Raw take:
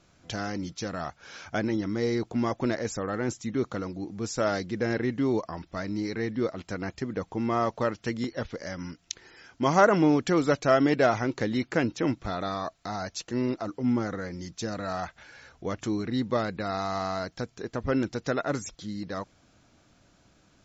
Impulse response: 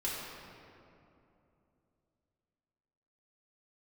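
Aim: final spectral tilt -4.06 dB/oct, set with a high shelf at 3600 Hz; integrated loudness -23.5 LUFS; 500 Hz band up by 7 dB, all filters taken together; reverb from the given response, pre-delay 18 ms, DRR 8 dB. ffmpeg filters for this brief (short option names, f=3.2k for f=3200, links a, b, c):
-filter_complex "[0:a]equalizer=f=500:t=o:g=9,highshelf=f=3.6k:g=-3.5,asplit=2[a][b];[1:a]atrim=start_sample=2205,adelay=18[c];[b][c]afir=irnorm=-1:irlink=0,volume=-12.5dB[d];[a][d]amix=inputs=2:normalize=0,volume=0.5dB"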